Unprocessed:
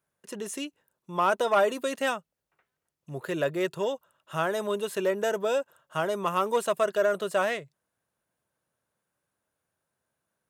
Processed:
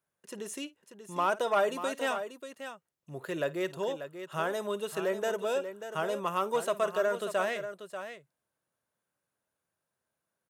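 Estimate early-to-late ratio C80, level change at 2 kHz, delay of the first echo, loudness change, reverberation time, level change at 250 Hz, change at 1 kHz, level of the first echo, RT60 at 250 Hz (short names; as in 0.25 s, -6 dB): none, -3.5 dB, 53 ms, -4.0 dB, none, -4.5 dB, -3.5 dB, -19.0 dB, none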